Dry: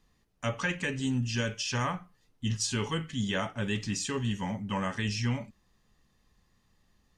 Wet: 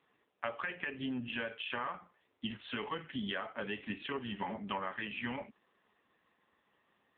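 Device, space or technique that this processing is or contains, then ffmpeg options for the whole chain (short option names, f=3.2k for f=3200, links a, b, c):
voicemail: -af "highpass=380,lowpass=2.9k,acompressor=threshold=-40dB:ratio=12,volume=7.5dB" -ar 8000 -c:a libopencore_amrnb -b:a 5900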